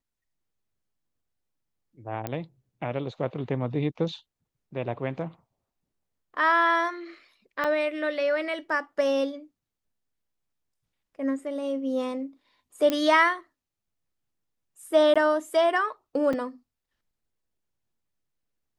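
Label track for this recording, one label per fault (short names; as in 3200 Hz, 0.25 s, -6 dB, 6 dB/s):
2.270000	2.270000	pop -16 dBFS
7.640000	7.650000	gap 5.7 ms
12.900000	12.900000	pop -12 dBFS
15.140000	15.160000	gap 16 ms
16.330000	16.330000	gap 4.3 ms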